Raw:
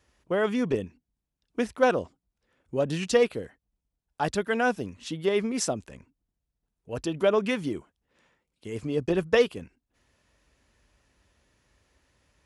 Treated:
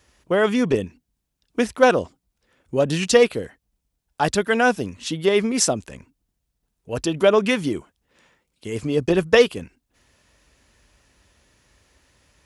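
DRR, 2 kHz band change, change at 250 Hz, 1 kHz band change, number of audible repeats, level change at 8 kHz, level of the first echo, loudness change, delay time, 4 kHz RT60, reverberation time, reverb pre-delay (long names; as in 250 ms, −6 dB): no reverb audible, +7.5 dB, +6.5 dB, +7.0 dB, no echo audible, +10.5 dB, no echo audible, +7.0 dB, no echo audible, no reverb audible, no reverb audible, no reverb audible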